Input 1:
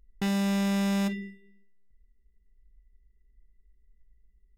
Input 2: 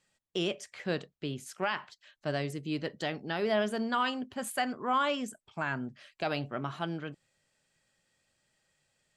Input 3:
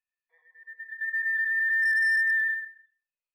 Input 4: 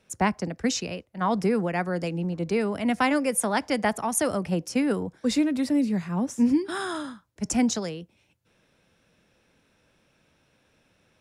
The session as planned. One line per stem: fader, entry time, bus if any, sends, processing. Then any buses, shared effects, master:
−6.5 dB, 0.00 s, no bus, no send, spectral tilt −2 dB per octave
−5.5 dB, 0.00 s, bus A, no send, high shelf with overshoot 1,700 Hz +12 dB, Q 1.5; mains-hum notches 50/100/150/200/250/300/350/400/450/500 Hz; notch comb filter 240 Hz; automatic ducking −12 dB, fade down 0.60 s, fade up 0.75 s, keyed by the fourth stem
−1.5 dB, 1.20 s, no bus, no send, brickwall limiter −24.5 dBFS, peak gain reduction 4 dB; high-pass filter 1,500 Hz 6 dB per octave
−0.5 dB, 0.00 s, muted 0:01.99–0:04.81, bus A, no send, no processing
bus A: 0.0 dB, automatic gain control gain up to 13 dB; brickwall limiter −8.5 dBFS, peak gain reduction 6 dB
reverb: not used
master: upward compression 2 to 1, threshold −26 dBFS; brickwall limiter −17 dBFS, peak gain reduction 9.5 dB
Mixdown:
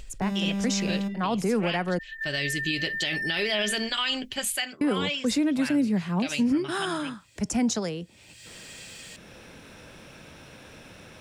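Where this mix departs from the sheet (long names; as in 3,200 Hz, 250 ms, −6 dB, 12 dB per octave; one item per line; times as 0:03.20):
stem 2: missing mains-hum notches 50/100/150/200/250/300/350/400/450/500 Hz
stem 4 −0.5 dB → −12.0 dB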